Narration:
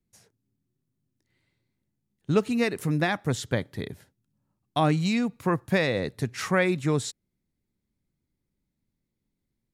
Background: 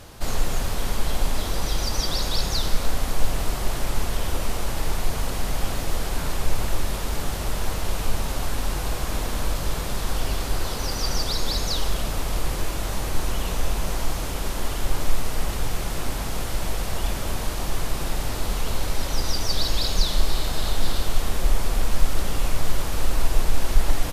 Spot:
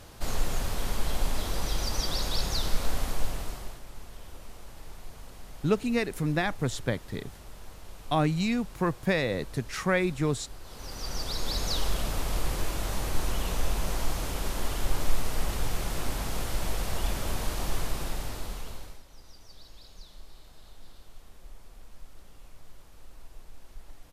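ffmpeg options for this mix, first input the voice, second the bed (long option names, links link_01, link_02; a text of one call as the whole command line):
ffmpeg -i stem1.wav -i stem2.wav -filter_complex "[0:a]adelay=3350,volume=-2.5dB[link_01];[1:a]volume=11dB,afade=type=out:start_time=3.01:duration=0.8:silence=0.177828,afade=type=in:start_time=10.63:duration=1.13:silence=0.158489,afade=type=out:start_time=17.73:duration=1.3:silence=0.0668344[link_02];[link_01][link_02]amix=inputs=2:normalize=0" out.wav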